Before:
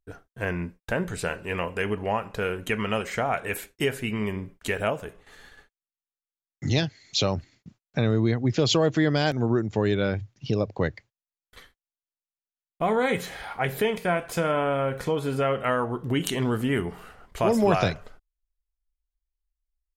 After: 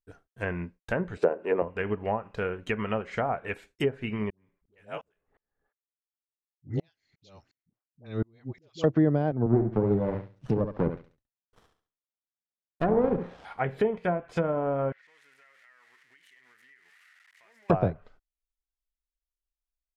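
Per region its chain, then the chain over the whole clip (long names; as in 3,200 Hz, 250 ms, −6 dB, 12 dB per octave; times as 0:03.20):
0:01.17–0:01.62: high-pass filter 320 Hz + de-essing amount 95% + parametric band 410 Hz +10 dB 2.5 octaves
0:04.30–0:08.84: low-pass that shuts in the quiet parts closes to 690 Hz, open at −23 dBFS + all-pass dispersion highs, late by 80 ms, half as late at 530 Hz + tremolo with a ramp in dB swelling 2.8 Hz, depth 36 dB
0:09.46–0:13.45: high-pass filter 93 Hz 24 dB per octave + repeating echo 69 ms, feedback 33%, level −6 dB + windowed peak hold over 17 samples
0:14.92–0:17.70: spike at every zero crossing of −15 dBFS + resonant band-pass 1,900 Hz, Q 7.4 + downward compressor, threshold −45 dBFS
whole clip: treble cut that deepens with the level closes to 760 Hz, closed at −20 dBFS; expander for the loud parts 1.5 to 1, over −43 dBFS; level +1.5 dB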